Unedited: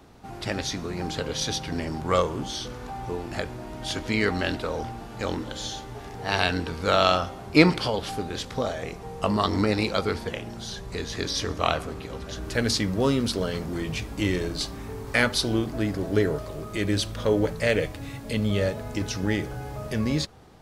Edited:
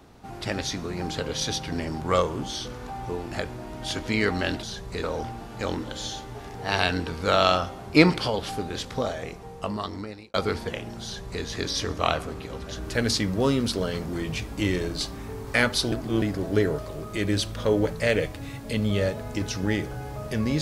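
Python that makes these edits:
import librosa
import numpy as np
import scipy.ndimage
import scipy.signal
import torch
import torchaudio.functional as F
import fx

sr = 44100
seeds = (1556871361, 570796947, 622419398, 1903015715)

y = fx.edit(x, sr, fx.fade_out_span(start_s=8.65, length_s=1.29),
    fx.duplicate(start_s=10.63, length_s=0.4, to_s=4.63),
    fx.reverse_span(start_s=15.52, length_s=0.3), tone=tone)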